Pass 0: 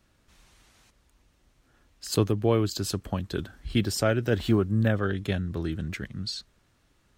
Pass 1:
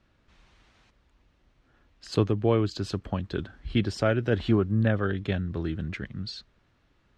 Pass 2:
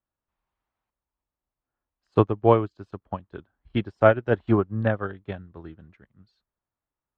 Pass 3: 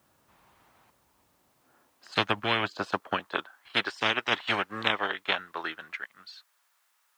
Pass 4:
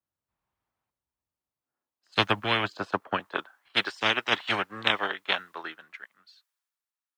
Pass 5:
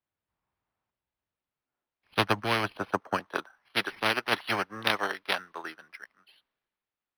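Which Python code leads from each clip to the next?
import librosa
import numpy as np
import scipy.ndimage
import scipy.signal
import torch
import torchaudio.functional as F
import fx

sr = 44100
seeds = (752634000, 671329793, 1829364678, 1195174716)

y1 = scipy.signal.sosfilt(scipy.signal.butter(2, 3800.0, 'lowpass', fs=sr, output='sos'), x)
y2 = fx.curve_eq(y1, sr, hz=(230.0, 460.0, 940.0, 1600.0, 4600.0), db=(0, 3, 10, 2, -6))
y2 = fx.upward_expand(y2, sr, threshold_db=-38.0, expansion=2.5)
y2 = y2 * librosa.db_to_amplitude(5.5)
y3 = fx.filter_sweep_highpass(y2, sr, from_hz=110.0, to_hz=1400.0, start_s=1.24, end_s=3.78, q=0.8)
y3 = fx.spectral_comp(y3, sr, ratio=10.0)
y4 = fx.band_widen(y3, sr, depth_pct=70)
y5 = np.interp(np.arange(len(y4)), np.arange(len(y4))[::6], y4[::6])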